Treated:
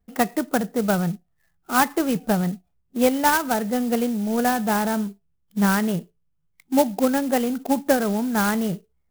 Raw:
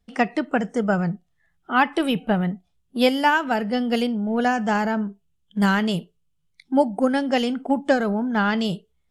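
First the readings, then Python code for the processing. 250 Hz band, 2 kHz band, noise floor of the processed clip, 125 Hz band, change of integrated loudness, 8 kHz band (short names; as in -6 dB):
0.0 dB, -2.5 dB, -69 dBFS, 0.0 dB, 0.0 dB, +13.5 dB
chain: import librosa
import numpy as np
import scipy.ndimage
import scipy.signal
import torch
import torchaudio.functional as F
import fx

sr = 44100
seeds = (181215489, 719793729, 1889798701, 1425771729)

y = scipy.signal.sosfilt(scipy.signal.butter(2, 2200.0, 'lowpass', fs=sr, output='sos'), x)
y = fx.clock_jitter(y, sr, seeds[0], jitter_ms=0.059)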